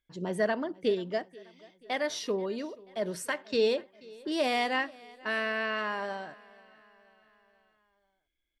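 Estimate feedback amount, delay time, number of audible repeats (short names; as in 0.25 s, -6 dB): 54%, 0.484 s, 3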